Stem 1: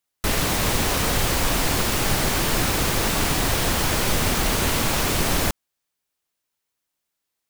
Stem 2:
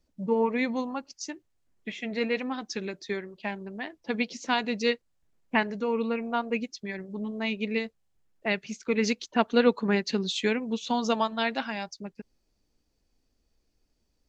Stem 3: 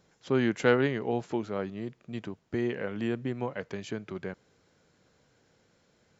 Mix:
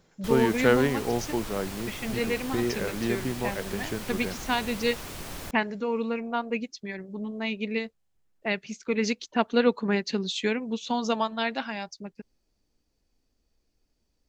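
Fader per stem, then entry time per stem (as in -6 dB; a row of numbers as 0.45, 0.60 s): -17.0, -0.5, +2.0 dB; 0.00, 0.00, 0.00 s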